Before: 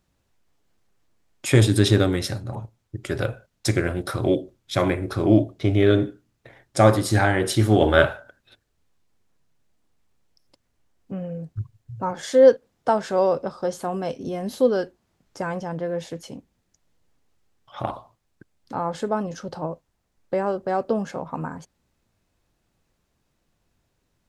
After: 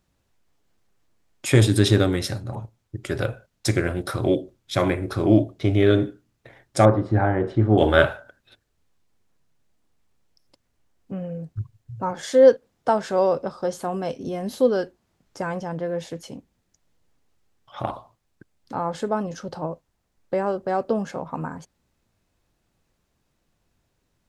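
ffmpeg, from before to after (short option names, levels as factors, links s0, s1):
-filter_complex "[0:a]asettb=1/sr,asplit=3[s0][s1][s2];[s0]atrim=end=6.854[s3];[s1]atrim=start=6.85:end=7.78,asetpts=PTS-STARTPTS,afade=t=in:d=0.004:c=qsin,afade=t=out:st=0.926:d=0.004:c=qsin,lowpass=1100[s4];[s2]atrim=start=7.776[s5];[s3][s4]acrossfade=d=0.004:c1=hsin:c2=qsin[s6];[s6][s5]acrossfade=d=0.004:c1=qsin:c2=hsin"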